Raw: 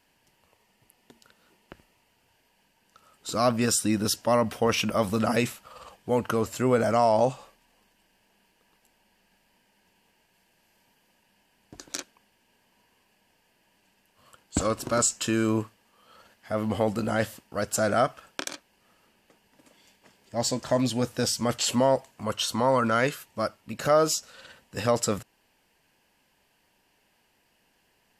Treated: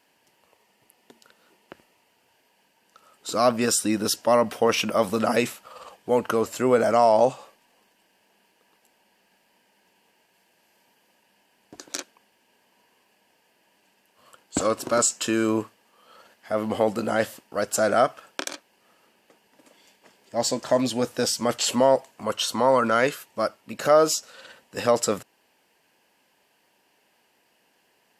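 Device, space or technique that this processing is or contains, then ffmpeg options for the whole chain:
filter by subtraction: -filter_complex "[0:a]asplit=2[link_01][link_02];[link_02]lowpass=420,volume=-1[link_03];[link_01][link_03]amix=inputs=2:normalize=0,volume=2dB"

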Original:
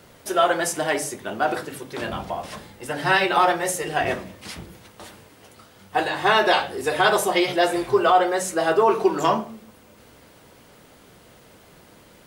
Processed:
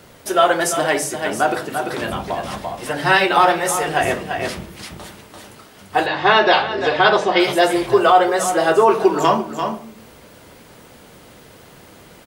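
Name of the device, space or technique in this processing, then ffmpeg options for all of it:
ducked delay: -filter_complex "[0:a]asplit=3[link_01][link_02][link_03];[link_02]adelay=342,volume=-3dB[link_04];[link_03]apad=whole_len=555806[link_05];[link_04][link_05]sidechaincompress=threshold=-28dB:ratio=5:attack=11:release=458[link_06];[link_01][link_06]amix=inputs=2:normalize=0,asettb=1/sr,asplit=3[link_07][link_08][link_09];[link_07]atrim=end=6.064[link_10];[link_08]atrim=start=6.06:end=7.4,asetpts=PTS-STARTPTS,afade=type=in:duration=0.004:curve=qsin,afade=type=out:start_time=1.336:duration=0.004:curve=qsin,lowpass=frequency=5100:width=0.5412,lowpass=frequency=5100:width=1.3066[link_11];[link_09]atrim=start=7.396[link_12];[link_10][link_11]acrossfade=duration=0.004:curve1=hsin:curve2=qsin[link_13];[link_13][link_12]acrossfade=duration=0.004:curve1=qsin:curve2=hsin,volume=4.5dB"

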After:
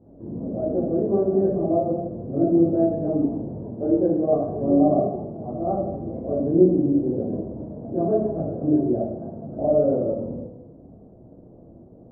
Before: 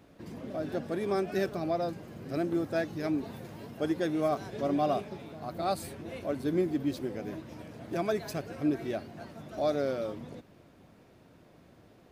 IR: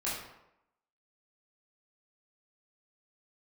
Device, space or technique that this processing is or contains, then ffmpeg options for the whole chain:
next room: -filter_complex "[0:a]lowpass=frequency=610:width=0.5412,lowpass=frequency=610:width=1.3066[link_01];[1:a]atrim=start_sample=2205[link_02];[link_01][link_02]afir=irnorm=-1:irlink=0,volume=7dB"

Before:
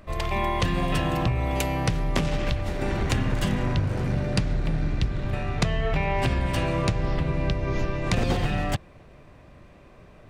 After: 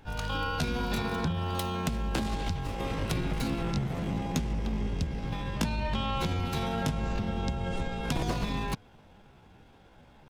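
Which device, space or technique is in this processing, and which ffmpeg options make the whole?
chipmunk voice: -af "asetrate=60591,aresample=44100,atempo=0.727827,volume=-6dB"

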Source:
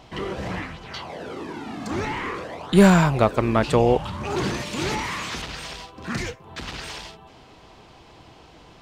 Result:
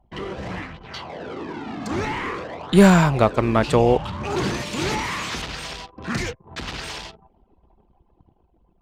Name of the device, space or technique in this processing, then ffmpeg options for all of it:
voice memo with heavy noise removal: -af "anlmdn=0.398,dynaudnorm=framelen=250:gausssize=9:maxgain=4dB,volume=-1.5dB"

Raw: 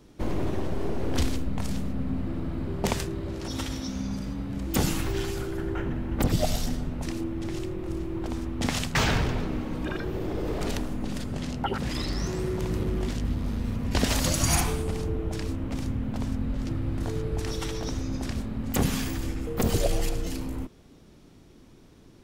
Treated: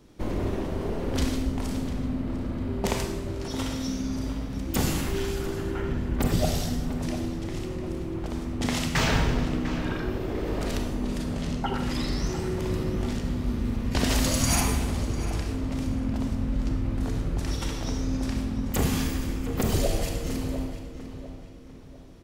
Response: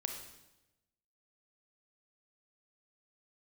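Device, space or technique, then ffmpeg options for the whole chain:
bathroom: -filter_complex "[1:a]atrim=start_sample=2205[link_01];[0:a][link_01]afir=irnorm=-1:irlink=0,asettb=1/sr,asplit=3[link_02][link_03][link_04];[link_02]atrim=end=3.804[link_05];[link_03]atrim=start=3.8:end=4.62,asetpts=PTS-STARTPTS,afade=type=in:duration=0.004:curve=qsin,afade=type=out:start_time=0.816:duration=0.004:curve=qsin,highshelf=frequency=7700:gain=5.5[link_06];[link_04]atrim=start=4.616[link_07];[link_05][link_06]acrossfade=duration=0.004:curve1=hsin:curve2=qsin[link_08];[link_08][link_07]acrossfade=duration=0.004:curve1=qsin:curve2=hsin,asplit=2[link_09][link_10];[link_10]adelay=699,lowpass=frequency=3300:poles=1,volume=-11dB,asplit=2[link_11][link_12];[link_12]adelay=699,lowpass=frequency=3300:poles=1,volume=0.41,asplit=2[link_13][link_14];[link_14]adelay=699,lowpass=frequency=3300:poles=1,volume=0.41,asplit=2[link_15][link_16];[link_16]adelay=699,lowpass=frequency=3300:poles=1,volume=0.41[link_17];[link_09][link_11][link_13][link_15][link_17]amix=inputs=5:normalize=0"

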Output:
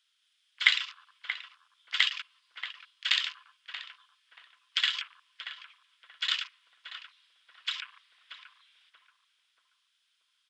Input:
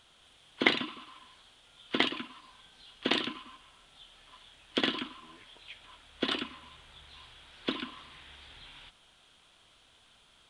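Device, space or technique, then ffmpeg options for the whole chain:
headphones lying on a table: -filter_complex "[0:a]afwtdn=0.00708,highpass=frequency=1500:width=0.5412,highpass=frequency=1500:width=1.3066,equalizer=frequency=5100:width_type=o:width=0.28:gain=8,asplit=2[link_01][link_02];[link_02]adelay=631,lowpass=frequency=860:poles=1,volume=-3.5dB,asplit=2[link_03][link_04];[link_04]adelay=631,lowpass=frequency=860:poles=1,volume=0.53,asplit=2[link_05][link_06];[link_06]adelay=631,lowpass=frequency=860:poles=1,volume=0.53,asplit=2[link_07][link_08];[link_08]adelay=631,lowpass=frequency=860:poles=1,volume=0.53,asplit=2[link_09][link_10];[link_10]adelay=631,lowpass=frequency=860:poles=1,volume=0.53,asplit=2[link_11][link_12];[link_12]adelay=631,lowpass=frequency=860:poles=1,volume=0.53,asplit=2[link_13][link_14];[link_14]adelay=631,lowpass=frequency=860:poles=1,volume=0.53[link_15];[link_01][link_03][link_05][link_07][link_09][link_11][link_13][link_15]amix=inputs=8:normalize=0,volume=4dB"

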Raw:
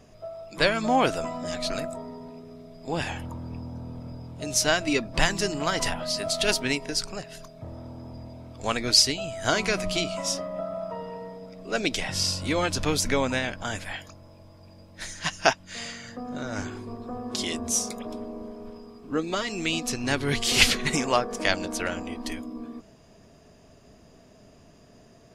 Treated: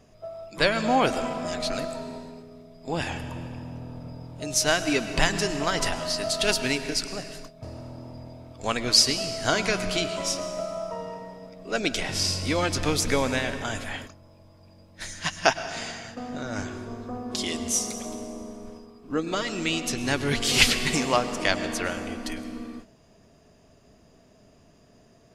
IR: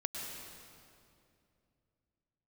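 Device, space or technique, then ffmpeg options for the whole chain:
keyed gated reverb: -filter_complex "[0:a]asplit=3[link_01][link_02][link_03];[1:a]atrim=start_sample=2205[link_04];[link_02][link_04]afir=irnorm=-1:irlink=0[link_05];[link_03]apad=whole_len=1117590[link_06];[link_05][link_06]sidechaingate=range=-33dB:threshold=-42dB:ratio=16:detection=peak,volume=-6dB[link_07];[link_01][link_07]amix=inputs=2:normalize=0,volume=-3dB"

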